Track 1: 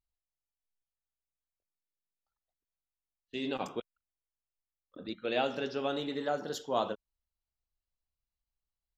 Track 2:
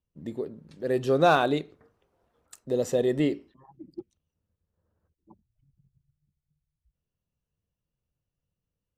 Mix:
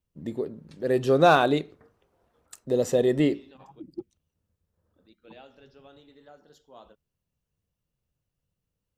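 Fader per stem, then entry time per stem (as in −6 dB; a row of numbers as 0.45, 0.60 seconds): −19.0, +2.5 decibels; 0.00, 0.00 seconds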